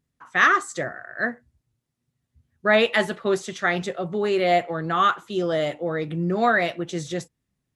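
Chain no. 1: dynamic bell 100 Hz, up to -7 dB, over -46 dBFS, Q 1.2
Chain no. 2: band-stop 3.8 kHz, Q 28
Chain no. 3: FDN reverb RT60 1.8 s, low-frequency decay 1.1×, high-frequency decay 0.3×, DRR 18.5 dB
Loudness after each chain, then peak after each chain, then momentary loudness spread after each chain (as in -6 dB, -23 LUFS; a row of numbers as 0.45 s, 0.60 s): -23.5 LUFS, -23.0 LUFS, -23.0 LUFS; -5.0 dBFS, -5.0 dBFS, -4.5 dBFS; 12 LU, 12 LU, 12 LU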